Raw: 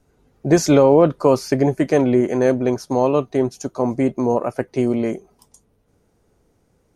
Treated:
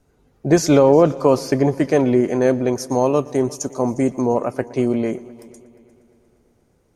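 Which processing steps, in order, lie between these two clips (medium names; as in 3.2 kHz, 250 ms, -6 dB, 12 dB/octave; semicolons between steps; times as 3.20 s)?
2.75–4.22 s: resonant high shelf 5 kHz +7 dB, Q 1.5; multi-head delay 118 ms, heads first and third, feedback 55%, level -22.5 dB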